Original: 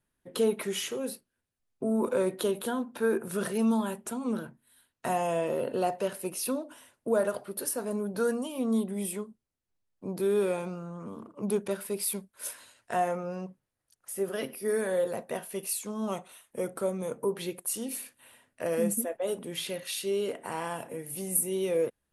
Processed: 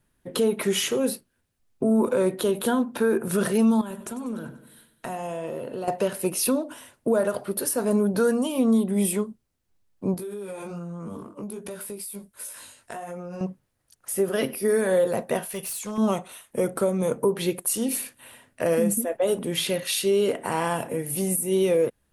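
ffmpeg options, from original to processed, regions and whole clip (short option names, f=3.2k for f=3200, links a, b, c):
-filter_complex "[0:a]asettb=1/sr,asplit=3[a][b][c];[a]atrim=end=3.814[d];[b]atrim=start=3.81:end=5.88,asetpts=PTS-STARTPTS,afade=t=in:d=0.004:c=qsin,afade=t=out:st=2.066:d=0.004:c=qsin,acompressor=threshold=-43dB:ratio=3:attack=3.2:release=140:knee=1:detection=peak,aecho=1:1:97|194|291|388|485|582:0.211|0.116|0.0639|0.0352|0.0193|0.0106,atrim=end_sample=91287[e];[c]atrim=start=5.876[f];[d][e]acrossfade=d=0.004:c1=hsin:c2=qsin[g];[g][f]acrossfade=d=0.004:c1=qsin:c2=hsin,asettb=1/sr,asplit=3[h][i][j];[h]atrim=end=10.144[k];[i]atrim=start=10.14:end=13.41,asetpts=PTS-STARTPTS,afade=t=in:d=0.004:c=qsin,afade=t=out:st=3.266:d=0.004:c=qsin,equalizer=f=10k:w=0.79:g=7,flanger=delay=17:depth=3.6:speed=1.3,acompressor=threshold=-41dB:ratio=16:attack=3.2:release=140:knee=1:detection=peak[l];[j]atrim=start=13.406[m];[k][l]acrossfade=d=0.004:c1=hsin:c2=qsin[n];[n][m]acrossfade=d=0.004:c1=qsin:c2=hsin,asettb=1/sr,asplit=3[o][p][q];[o]atrim=end=15.464[r];[p]atrim=start=15.46:end=15.98,asetpts=PTS-STARTPTS,afade=t=in:d=0.004:c=qsin,afade=t=out:st=0.516:d=0.004:c=qsin,equalizer=f=300:w=1.2:g=-12,acompressor=threshold=-36dB:ratio=4:attack=3.2:release=140:knee=1:detection=peak,aeval=exprs='0.0178*(abs(mod(val(0)/0.0178+3,4)-2)-1)':c=same[s];[q]atrim=start=15.976[t];[r][s]acrossfade=d=0.004:c1=hsin:c2=qsin[u];[u][t]acrossfade=d=0.004:c1=qsin:c2=hsin,lowshelf=f=240:g=4.5,alimiter=limit=-22dB:level=0:latency=1:release=196,volume=8.5dB"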